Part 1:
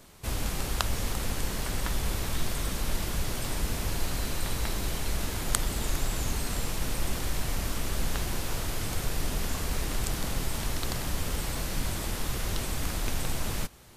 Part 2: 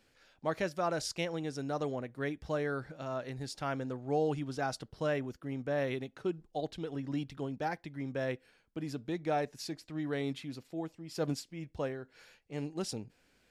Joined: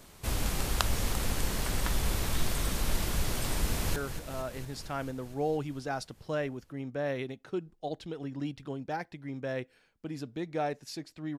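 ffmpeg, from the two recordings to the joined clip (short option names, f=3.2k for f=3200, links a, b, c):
-filter_complex "[0:a]apad=whole_dur=11.38,atrim=end=11.38,atrim=end=3.962[a];[1:a]atrim=start=2.678:end=10.1[b];[a][b]acrossfade=d=0.004:c1=hsin:c2=hsin,asplit=2[c][d];[d]afade=t=in:st=3.61:d=0.01,afade=t=out:st=3.96:d=0.01,aecho=0:1:230|460|690|920|1150|1380|1610|1840|2070|2300|2530|2760:0.316228|0.237171|0.177878|0.133409|0.100056|0.0750423|0.0562817|0.0422113|0.0316585|0.0237439|0.0178079|0.0133559[e];[c][e]amix=inputs=2:normalize=0"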